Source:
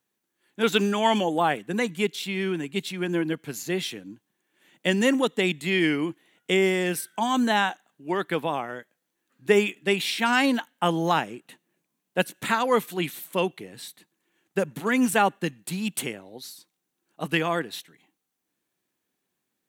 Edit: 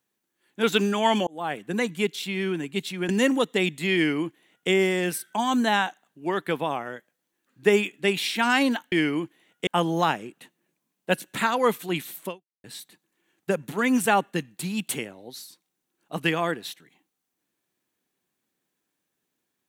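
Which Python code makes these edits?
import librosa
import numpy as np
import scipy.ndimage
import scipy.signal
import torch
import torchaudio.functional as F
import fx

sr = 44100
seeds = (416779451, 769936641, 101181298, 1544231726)

y = fx.edit(x, sr, fx.fade_in_span(start_s=1.27, length_s=0.43),
    fx.cut(start_s=3.09, length_s=1.83),
    fx.duplicate(start_s=5.78, length_s=0.75, to_s=10.75),
    fx.fade_out_span(start_s=13.35, length_s=0.37, curve='exp'), tone=tone)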